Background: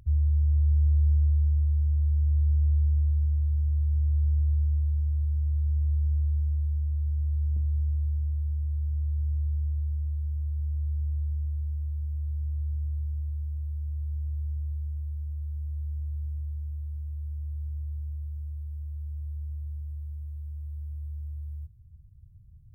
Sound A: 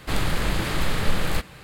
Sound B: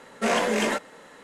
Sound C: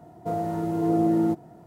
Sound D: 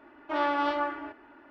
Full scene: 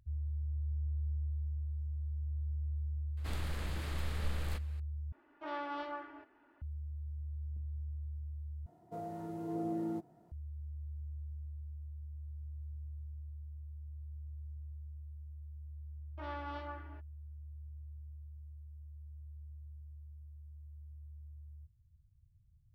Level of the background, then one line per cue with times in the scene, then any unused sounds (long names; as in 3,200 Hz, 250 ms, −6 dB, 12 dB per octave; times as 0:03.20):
background −14.5 dB
0:03.17: mix in A −17.5 dB
0:05.12: overwrite with D −13 dB
0:08.66: overwrite with C −15 dB
0:15.88: mix in D −16 dB + noise gate −46 dBFS, range −29 dB
not used: B